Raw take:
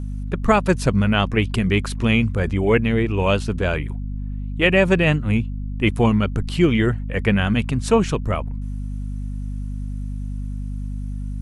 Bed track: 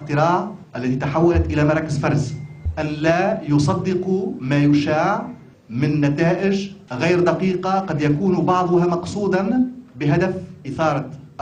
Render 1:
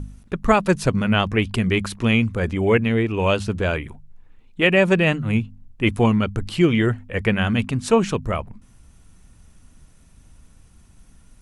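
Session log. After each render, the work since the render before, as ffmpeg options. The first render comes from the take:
-af "bandreject=f=50:t=h:w=4,bandreject=f=100:t=h:w=4,bandreject=f=150:t=h:w=4,bandreject=f=200:t=h:w=4,bandreject=f=250:t=h:w=4"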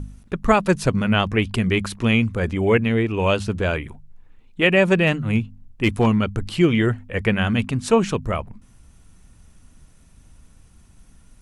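-filter_complex "[0:a]asettb=1/sr,asplit=3[a][b][c];[a]atrim=end=5.074[d];[b]atrim=start=5.07:end=6.07,asetpts=PTS-STARTPTS,afade=t=in:d=0.004:c=qsin,afade=t=out:st=0.996:d=0.004:c=qsin,asoftclip=type=hard:threshold=-10.5dB[e];[c]atrim=start=6.066[f];[d][e]acrossfade=d=0.004:c1=hsin:c2=qsin[g];[g][f]acrossfade=d=0.004:c1=qsin:c2=hsin"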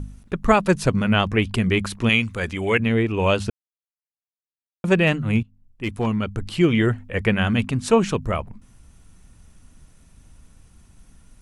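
-filter_complex "[0:a]asettb=1/sr,asplit=3[a][b][c];[a]atrim=end=2.094[d];[b]atrim=start=2.09:end=2.8,asetpts=PTS-STARTPTS,afade=t=in:d=0.004:c=qsin,afade=t=out:st=0.706:d=0.004:c=qsin,tiltshelf=f=1.2k:g=-6[e];[c]atrim=start=2.796[f];[d][e]acrossfade=d=0.004:c1=hsin:c2=qsin[g];[g][f]acrossfade=d=0.004:c1=qsin:c2=hsin,asplit=4[h][i][j][k];[h]atrim=end=3.5,asetpts=PTS-STARTPTS,afade=t=out:st=3.496:d=0.004:c=hsin[l];[i]atrim=start=3.5:end=4.84,asetpts=PTS-STARTPTS,volume=0[m];[j]atrim=start=4.84:end=5.43,asetpts=PTS-STARTPTS,afade=t=in:d=0.004:c=hsin,afade=t=out:st=0.586:d=0.004:c=hsin:silence=0.141254[n];[k]atrim=start=5.43,asetpts=PTS-STARTPTS,afade=t=in:d=1.36:silence=0.141254[o];[l][m][n][o]concat=n=4:v=0:a=1"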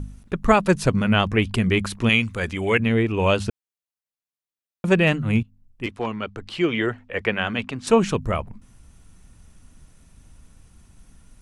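-filter_complex "[0:a]asettb=1/sr,asplit=3[a][b][c];[a]atrim=end=5.864[d];[b]atrim=start=5.86:end=7.87,asetpts=PTS-STARTPTS,afade=t=in:d=0.004:c=qsin,afade=t=out:st=2.006:d=0.004:c=qsin,acrossover=split=310 6000:gain=0.251 1 0.2[e][f][g];[e][f][g]amix=inputs=3:normalize=0[h];[c]atrim=start=7.866[i];[d][h]acrossfade=d=0.004:c1=hsin:c2=qsin[j];[j][i]acrossfade=d=0.004:c1=qsin:c2=hsin"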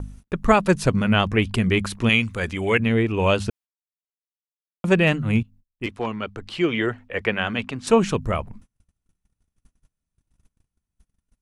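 -af "agate=range=-32dB:threshold=-43dB:ratio=16:detection=peak"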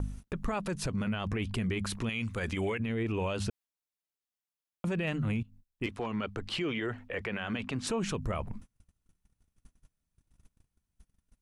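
-af "acompressor=threshold=-23dB:ratio=6,alimiter=level_in=0.5dB:limit=-24dB:level=0:latency=1:release=33,volume=-0.5dB"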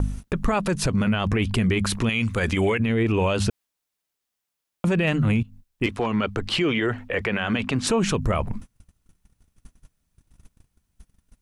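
-af "volume=10.5dB"

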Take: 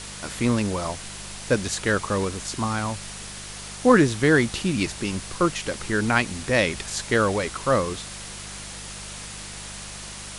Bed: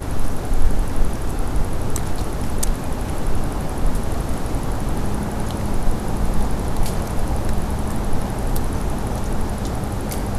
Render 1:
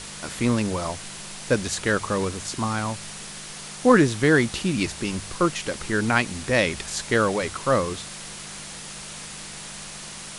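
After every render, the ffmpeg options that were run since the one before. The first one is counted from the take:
-af "bandreject=f=50:t=h:w=4,bandreject=f=100:t=h:w=4"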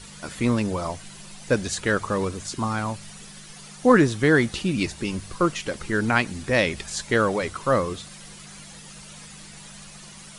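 -af "afftdn=nr=10:nf=-38"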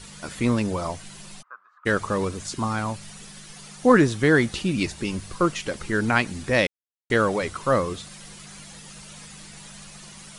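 -filter_complex "[0:a]asplit=3[a][b][c];[a]afade=t=out:st=1.41:d=0.02[d];[b]asuperpass=centerf=1200:order=4:qfactor=4.7,afade=t=in:st=1.41:d=0.02,afade=t=out:st=1.85:d=0.02[e];[c]afade=t=in:st=1.85:d=0.02[f];[d][e][f]amix=inputs=3:normalize=0,asplit=3[g][h][i];[g]atrim=end=6.67,asetpts=PTS-STARTPTS,afade=t=out:st=6.666:d=0.004:c=hsin[j];[h]atrim=start=6.67:end=7.1,asetpts=PTS-STARTPTS,volume=0[k];[i]atrim=start=7.1,asetpts=PTS-STARTPTS,afade=t=in:d=0.004:c=hsin[l];[j][k][l]concat=n=3:v=0:a=1"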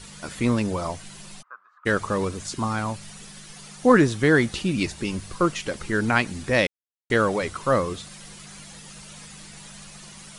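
-af anull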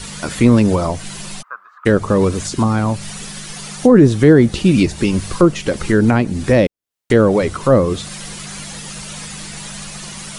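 -filter_complex "[0:a]acrossover=split=620[a][b];[b]acompressor=threshold=-36dB:ratio=5[c];[a][c]amix=inputs=2:normalize=0,alimiter=level_in=12.5dB:limit=-1dB:release=50:level=0:latency=1"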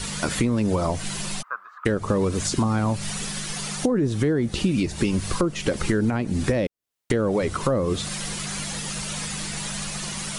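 -af "alimiter=limit=-5dB:level=0:latency=1:release=214,acompressor=threshold=-19dB:ratio=6"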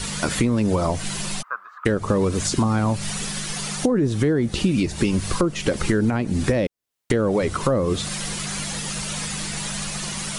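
-af "volume=2dB"

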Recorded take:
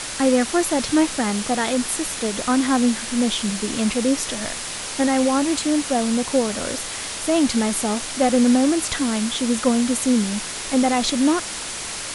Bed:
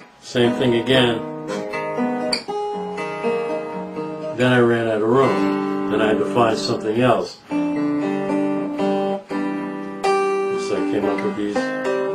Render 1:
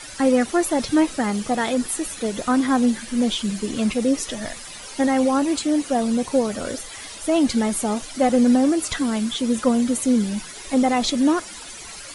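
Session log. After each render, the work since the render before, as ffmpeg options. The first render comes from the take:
-af "afftdn=nr=13:nf=-30"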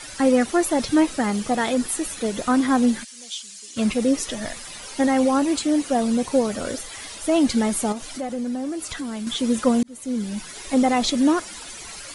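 -filter_complex "[0:a]asplit=3[a][b][c];[a]afade=t=out:st=3.03:d=0.02[d];[b]bandpass=f=6.5k:t=q:w=1.3,afade=t=in:st=3.03:d=0.02,afade=t=out:st=3.76:d=0.02[e];[c]afade=t=in:st=3.76:d=0.02[f];[d][e][f]amix=inputs=3:normalize=0,asettb=1/sr,asplit=3[g][h][i];[g]atrim=end=7.924[j];[h]atrim=start=7.92:end=9.27,asetpts=PTS-STARTPTS,afade=t=in:d=0.004:c=qsin,afade=t=out:st=1.346:d=0.004:c=qsin,acompressor=threshold=-30dB:ratio=2.5:attack=3.2:release=140:knee=1:detection=peak[k];[i]atrim=start=9.266[l];[j][k]acrossfade=d=0.004:c1=hsin:c2=qsin[m];[m][l]acrossfade=d=0.004:c1=qsin:c2=hsin,asplit=2[n][o];[n]atrim=end=9.83,asetpts=PTS-STARTPTS,afade=t=out:st=9.826:d=0.004:c=hsin[p];[o]atrim=start=9.83,asetpts=PTS-STARTPTS,afade=t=in:d=0.73[q];[p][q]concat=n=2:v=0:a=1"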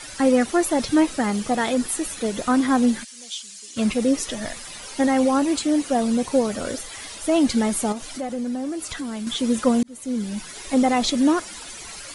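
-af anull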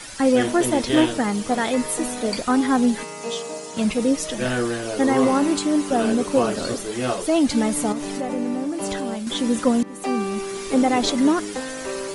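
-filter_complex "[1:a]volume=-8.5dB[a];[0:a][a]amix=inputs=2:normalize=0"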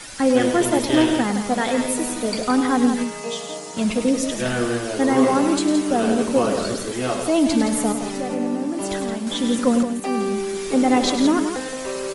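-af "aecho=1:1:102|169.1:0.316|0.398"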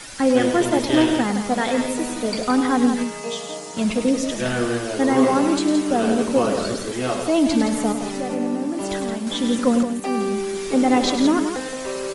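-filter_complex "[0:a]acrossover=split=7600[a][b];[b]acompressor=threshold=-40dB:ratio=4:attack=1:release=60[c];[a][c]amix=inputs=2:normalize=0"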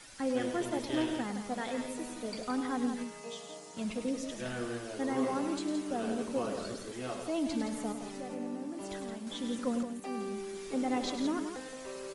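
-af "volume=-15dB"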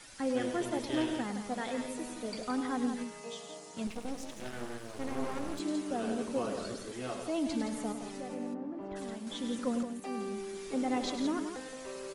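-filter_complex "[0:a]asettb=1/sr,asplit=3[a][b][c];[a]atrim=end=3.874[d];[b]atrim=start=3.87:end=5.6,asetpts=PTS-STARTPTS,afade=t=in:d=0.004:c=qsin,afade=t=out:st=1.726:d=0.004:c=qsin,aeval=exprs='max(val(0),0)':c=same[e];[c]atrim=start=5.596[f];[d][e]acrossfade=d=0.004:c1=hsin:c2=qsin[g];[g][f]acrossfade=d=0.004:c1=qsin:c2=hsin,asplit=3[h][i][j];[h]afade=t=out:st=8.53:d=0.02[k];[i]lowpass=1.5k,afade=t=in:st=8.53:d=0.02,afade=t=out:st=8.95:d=0.02[l];[j]afade=t=in:st=8.95:d=0.02[m];[k][l][m]amix=inputs=3:normalize=0"

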